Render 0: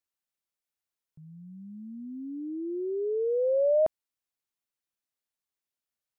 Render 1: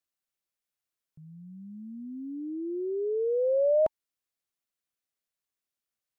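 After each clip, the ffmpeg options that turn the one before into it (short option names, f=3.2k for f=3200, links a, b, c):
-af "bandreject=f=890:w=12"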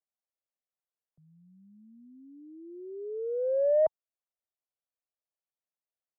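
-filter_complex "[0:a]acrossover=split=110|190|650[a][b][c][d];[d]adynamicsmooth=sensitivity=0.5:basefreq=870[e];[a][b][c][e]amix=inputs=4:normalize=0,lowshelf=f=450:t=q:w=1.5:g=-11"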